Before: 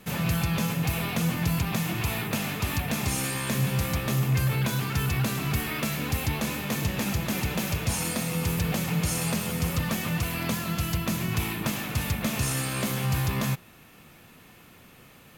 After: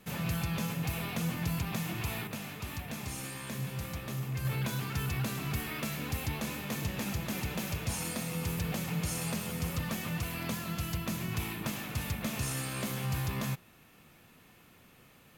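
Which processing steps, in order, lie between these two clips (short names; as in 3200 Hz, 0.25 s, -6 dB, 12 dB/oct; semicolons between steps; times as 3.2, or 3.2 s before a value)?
2.27–4.45 flange 1.7 Hz, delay 9.9 ms, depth 8.7 ms, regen -78%; gain -7 dB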